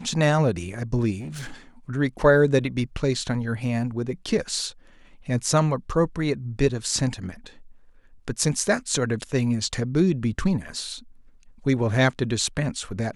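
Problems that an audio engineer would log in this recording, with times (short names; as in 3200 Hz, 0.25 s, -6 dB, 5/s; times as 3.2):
1.19–1.53 clipped -30.5 dBFS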